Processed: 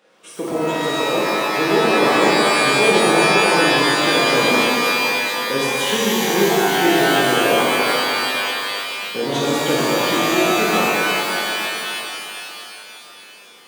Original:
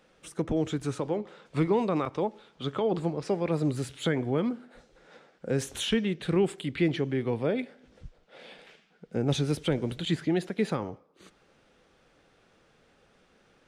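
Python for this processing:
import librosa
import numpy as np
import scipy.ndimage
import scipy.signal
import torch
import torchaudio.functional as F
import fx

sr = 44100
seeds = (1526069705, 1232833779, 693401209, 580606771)

y = fx.tilt_eq(x, sr, slope=-2.5, at=(1.97, 3.27))
y = scipy.signal.sosfilt(scipy.signal.butter(2, 280.0, 'highpass', fs=sr, output='sos'), y)
y = fx.rev_shimmer(y, sr, seeds[0], rt60_s=3.2, semitones=12, shimmer_db=-2, drr_db=-7.5)
y = y * librosa.db_to_amplitude(3.0)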